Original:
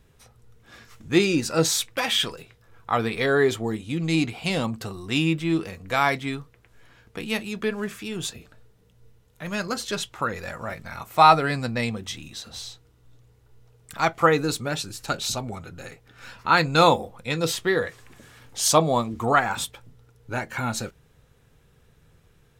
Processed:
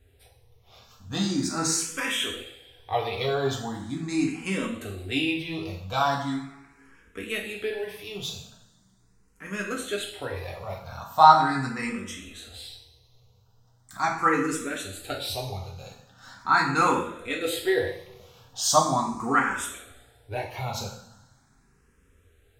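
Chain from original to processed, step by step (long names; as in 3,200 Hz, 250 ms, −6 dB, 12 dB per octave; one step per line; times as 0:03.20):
coupled-rooms reverb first 0.61 s, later 1.8 s, DRR −1 dB
frequency shifter mixed with the dry sound +0.4 Hz
level −3.5 dB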